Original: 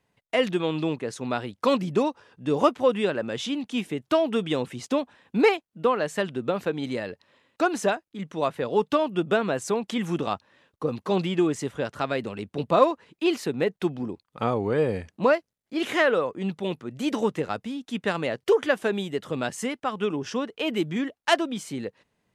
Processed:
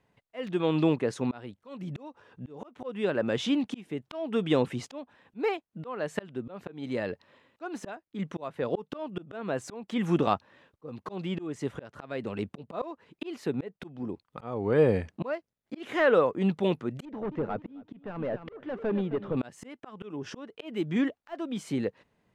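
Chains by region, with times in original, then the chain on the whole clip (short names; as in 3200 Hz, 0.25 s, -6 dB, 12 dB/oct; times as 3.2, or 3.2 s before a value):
1.51–2.83 notch 4900 Hz, Q 10 + compressor 3:1, threshold -30 dBFS
17.05–19.37 hard clip -25.5 dBFS + tape spacing loss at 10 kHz 38 dB + feedback echo 0.265 s, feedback 27%, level -14 dB
whole clip: de-esser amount 70%; high shelf 3600 Hz -9.5 dB; auto swell 0.46 s; gain +3 dB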